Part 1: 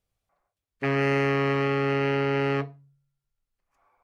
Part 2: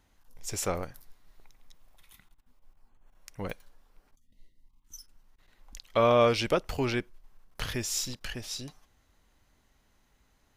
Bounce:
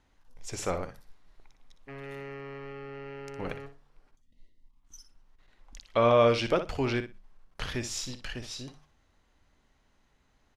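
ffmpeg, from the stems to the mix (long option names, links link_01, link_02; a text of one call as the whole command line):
ffmpeg -i stem1.wav -i stem2.wav -filter_complex "[0:a]adelay=1050,volume=-18dB,asplit=2[link_01][link_02];[link_02]volume=-12dB[link_03];[1:a]bandreject=frequency=50:width_type=h:width=6,bandreject=frequency=100:width_type=h:width=6,bandreject=frequency=150:width_type=h:width=6,bandreject=frequency=200:width_type=h:width=6,volume=0dB,asplit=2[link_04][link_05];[link_05]volume=-10.5dB[link_06];[link_03][link_06]amix=inputs=2:normalize=0,aecho=0:1:60|120|180:1|0.16|0.0256[link_07];[link_01][link_04][link_07]amix=inputs=3:normalize=0,lowpass=11000,highshelf=frequency=7800:gain=-11.5" out.wav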